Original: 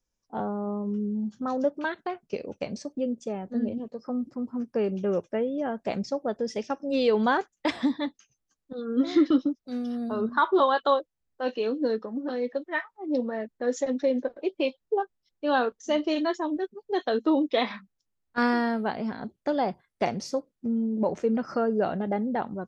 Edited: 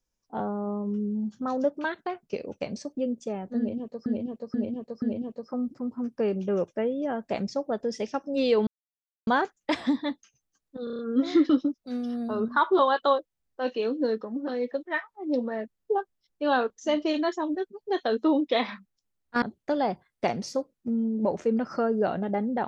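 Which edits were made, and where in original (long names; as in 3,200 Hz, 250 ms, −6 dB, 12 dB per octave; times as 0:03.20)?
0:03.58–0:04.06: repeat, 4 plays
0:07.23: splice in silence 0.60 s
0:08.80: stutter 0.03 s, 6 plays
0:13.58–0:14.79: remove
0:18.44–0:19.20: remove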